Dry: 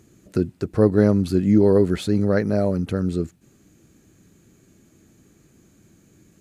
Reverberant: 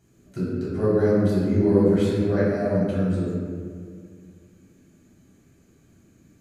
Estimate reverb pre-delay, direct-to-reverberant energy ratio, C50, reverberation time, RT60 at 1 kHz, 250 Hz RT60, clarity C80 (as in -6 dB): 3 ms, -10.0 dB, -2.5 dB, 2.0 s, 1.9 s, 2.6 s, 0.0 dB